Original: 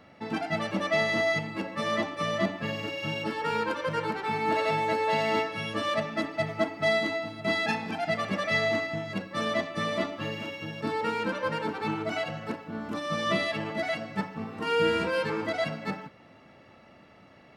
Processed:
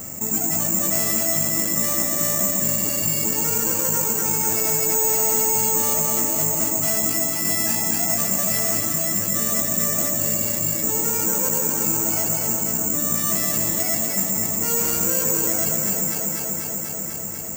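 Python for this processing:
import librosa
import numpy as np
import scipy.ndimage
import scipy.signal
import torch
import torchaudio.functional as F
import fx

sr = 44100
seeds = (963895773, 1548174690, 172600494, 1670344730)

p1 = fx.low_shelf(x, sr, hz=340.0, db=11.5)
p2 = np.clip(10.0 ** (21.0 / 20.0) * p1, -1.0, 1.0) / 10.0 ** (21.0 / 20.0)
p3 = p2 + fx.echo_alternate(p2, sr, ms=123, hz=970.0, feedback_pct=84, wet_db=-3, dry=0)
p4 = (np.kron(scipy.signal.resample_poly(p3, 1, 6), np.eye(6)[0]) * 6)[:len(p3)]
p5 = fx.env_flatten(p4, sr, amount_pct=50)
y = p5 * 10.0 ** (-7.5 / 20.0)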